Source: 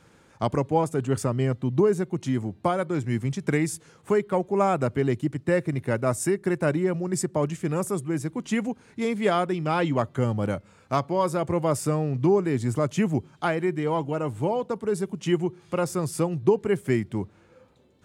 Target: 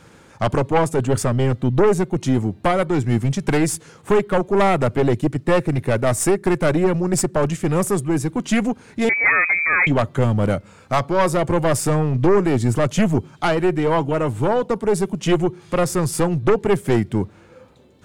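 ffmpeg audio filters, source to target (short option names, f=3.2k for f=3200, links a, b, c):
-filter_complex "[0:a]aeval=exprs='0.376*(cos(1*acos(clip(val(0)/0.376,-1,1)))-cos(1*PI/2))+0.133*(cos(5*acos(clip(val(0)/0.376,-1,1)))-cos(5*PI/2))+0.0668*(cos(6*acos(clip(val(0)/0.376,-1,1)))-cos(6*PI/2))':c=same,asettb=1/sr,asplit=3[a][b][c];[a]atrim=end=9.094[d];[b]atrim=start=9.09:end=9.87,asetpts=PTS-STARTPTS,afade=t=in:d=0.004:c=qsin,afade=t=out:st=0.776:d=0.004:c=qsin,lowpass=f=2.1k:t=q:w=0.5098,lowpass=f=2.1k:t=q:w=0.6013,lowpass=f=2.1k:t=q:w=0.9,lowpass=f=2.1k:t=q:w=2.563,afreqshift=-2500[e];[c]atrim=start=9.866[f];[d][e]acrossfade=d=0.004:c1=hsin:c2=qsin[g];[g][f]acrossfade=d=0.004:c1=qsin:c2=hsin"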